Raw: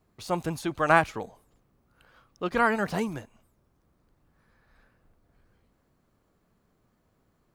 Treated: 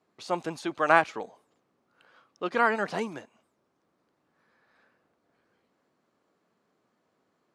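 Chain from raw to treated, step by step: BPF 270–6800 Hz

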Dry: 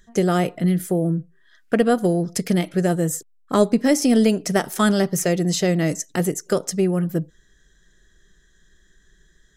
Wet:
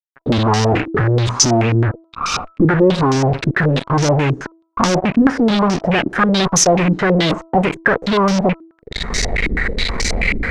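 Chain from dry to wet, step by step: speed glide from 58% -> 124%; recorder AGC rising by 40 dB/s; fuzz box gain 34 dB, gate -32 dBFS; de-hum 327.8 Hz, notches 4; stepped low-pass 9.3 Hz 310–5700 Hz; gain -1 dB

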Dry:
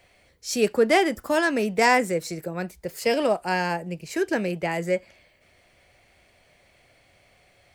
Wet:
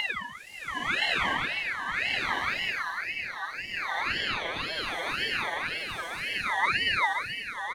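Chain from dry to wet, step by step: Paulstretch 9.8×, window 0.10 s, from 4.23; echo 1.118 s -5 dB; ring modulator with a swept carrier 1900 Hz, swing 30%, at 1.9 Hz; gain -3 dB

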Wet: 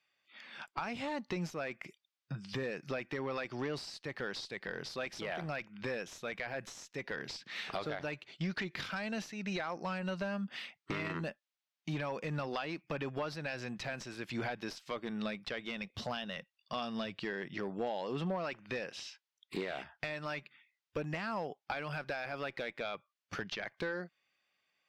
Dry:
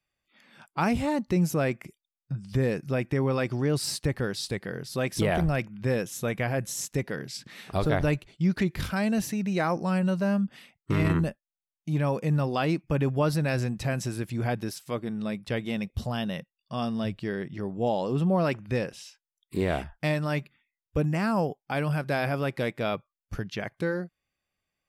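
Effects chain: HPF 120 Hz; tilt +4 dB/oct; compressor 16:1, threshold -36 dBFS, peak gain reduction 19 dB; one-sided clip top -34.5 dBFS; air absorption 210 m; gain +5 dB

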